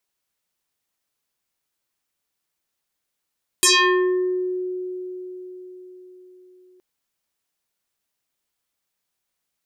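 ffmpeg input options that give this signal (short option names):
-f lavfi -i "aevalsrc='0.266*pow(10,-3*t/4.83)*sin(2*PI*366*t+7.7*pow(10,-3*t/0.88)*sin(2*PI*3.91*366*t))':d=3.17:s=44100"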